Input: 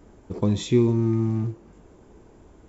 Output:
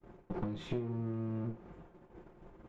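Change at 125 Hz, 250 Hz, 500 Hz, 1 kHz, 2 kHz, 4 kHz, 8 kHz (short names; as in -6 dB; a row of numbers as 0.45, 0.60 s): -15.0 dB, -15.5 dB, -16.0 dB, -9.0 dB, -10.0 dB, -16.0 dB, n/a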